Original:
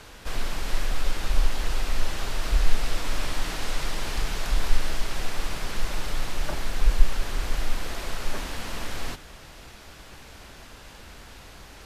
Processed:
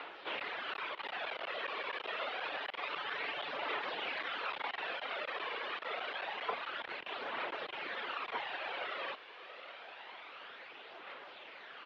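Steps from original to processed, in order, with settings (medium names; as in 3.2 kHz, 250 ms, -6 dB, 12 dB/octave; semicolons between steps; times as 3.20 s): 2.49–3.85 s: comb filter that takes the minimum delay 6.9 ms; reverb removal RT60 1.2 s; in parallel at -11.5 dB: word length cut 6-bit, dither triangular; on the sum: phaser 0.27 Hz, delay 1.7 ms, feedback 37%; hard clipper -12.5 dBFS, distortion -7 dB; on a send: feedback delay 682 ms, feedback 53%, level -20 dB; on the sum: mistuned SSB -150 Hz 600–3500 Hz; trim -1 dB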